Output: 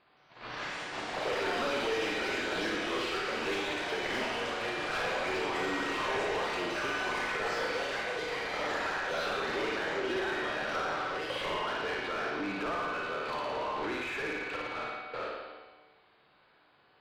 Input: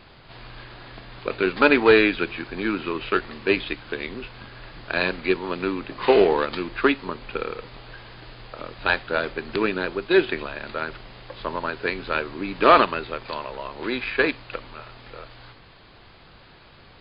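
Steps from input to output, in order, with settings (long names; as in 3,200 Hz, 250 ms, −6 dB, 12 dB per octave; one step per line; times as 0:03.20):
noise gate −40 dBFS, range −22 dB
downward compressor 8 to 1, threshold −31 dBFS, peak gain reduction 21 dB
tuned comb filter 150 Hz, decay 1.7 s, mix 80%
flutter between parallel walls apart 9.6 metres, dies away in 1.1 s
mid-hump overdrive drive 35 dB, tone 1,400 Hz, clips at −18 dBFS
delay with pitch and tempo change per echo 170 ms, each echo +4 semitones, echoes 3
level −5.5 dB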